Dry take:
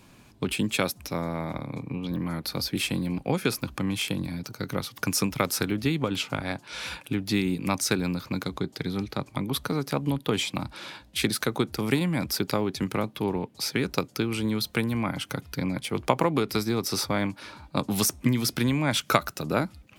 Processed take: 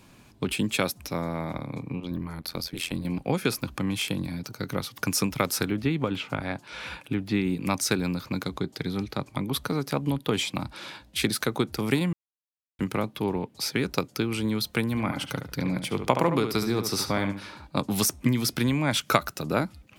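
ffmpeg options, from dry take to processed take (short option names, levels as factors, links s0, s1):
-filter_complex "[0:a]asettb=1/sr,asplit=3[s0][s1][s2];[s0]atrim=end=2.004[s3];[s1]atrim=start=2:end=3.05,asetpts=PTS-STARTPTS,afade=t=in:d=0.004:c=qsin,afade=t=out:st=1.046:d=0.004:c=qsin,tremolo=f=85:d=0.889[s4];[s2]atrim=start=3.046[s5];[s3][s4]acrossfade=d=0.004:c1=hsin:c2=qsin[s6];[s6][s5]acrossfade=d=0.004:c1=qsin:c2=hsin,asettb=1/sr,asplit=3[s7][s8][s9];[s7]atrim=end=5.654[s10];[s8]atrim=start=5.65:end=7.61,asetpts=PTS-STARTPTS,afade=t=in:d=0.004:c=qsin,afade=t=out:st=1.956:d=0.004:c=qsin,acrossover=split=3200[s11][s12];[s12]acompressor=threshold=0.00355:ratio=4:attack=1:release=60[s13];[s11][s13]amix=inputs=2:normalize=0[s14];[s9]atrim=start=7.606[s15];[s10][s14]acrossfade=d=0.004:c1=hsin:c2=qsin[s16];[s16][s15]acrossfade=d=0.004:c1=qsin:c2=hsin,asettb=1/sr,asplit=3[s17][s18][s19];[s17]atrim=end=14.904[s20];[s18]atrim=start=14.9:end=17.67,asetpts=PTS-STARTPTS,afade=t=in:d=0.004:c=qsin,afade=t=out:st=2.766:d=0.004:c=qsin,asplit=2[s21][s22];[s22]adelay=71,lowpass=f=3500:p=1,volume=0.422,asplit=2[s23][s24];[s24]adelay=71,lowpass=f=3500:p=1,volume=0.24,asplit=2[s25][s26];[s26]adelay=71,lowpass=f=3500:p=1,volume=0.24[s27];[s21][s23][s25][s27]amix=inputs=4:normalize=0,atrim=end_sample=122157[s28];[s19]atrim=start=17.666[s29];[s20][s28]acrossfade=d=0.004:c1=hsin:c2=qsin[s30];[s30][s29]acrossfade=d=0.004:c1=qsin:c2=hsin,asplit=3[s31][s32][s33];[s31]atrim=end=12.13,asetpts=PTS-STARTPTS,afade=t=out:st=12.126:d=0.004:c=hsin[s34];[s32]atrim=start=12.13:end=12.79,asetpts=PTS-STARTPTS,volume=0[s35];[s33]atrim=start=12.79,asetpts=PTS-STARTPTS,afade=t=in:d=0.004:c=hsin[s36];[s34][s35][s36]concat=n=3:v=0:a=1"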